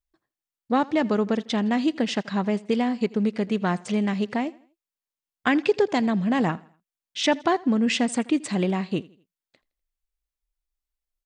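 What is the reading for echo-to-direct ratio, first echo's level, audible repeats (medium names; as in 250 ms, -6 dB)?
-22.0 dB, -22.5 dB, 2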